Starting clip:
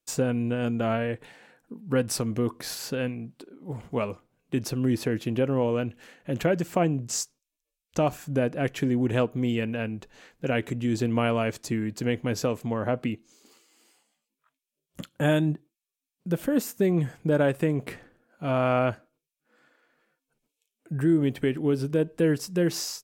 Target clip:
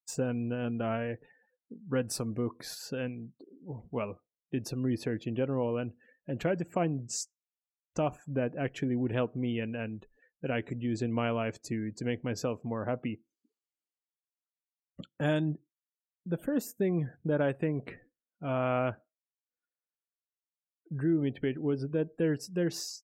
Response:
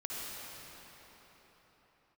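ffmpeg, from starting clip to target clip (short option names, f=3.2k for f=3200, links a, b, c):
-af "afftdn=nr=34:nf=-44,volume=-6dB"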